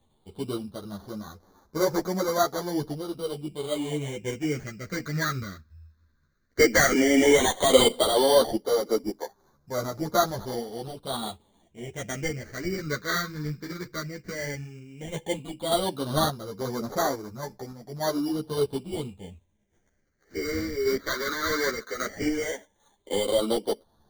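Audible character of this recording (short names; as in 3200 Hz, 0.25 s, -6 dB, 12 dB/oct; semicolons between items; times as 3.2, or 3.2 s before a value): aliases and images of a low sample rate 2600 Hz, jitter 0%; phasing stages 6, 0.13 Hz, lowest notch 770–2800 Hz; random-step tremolo; a shimmering, thickened sound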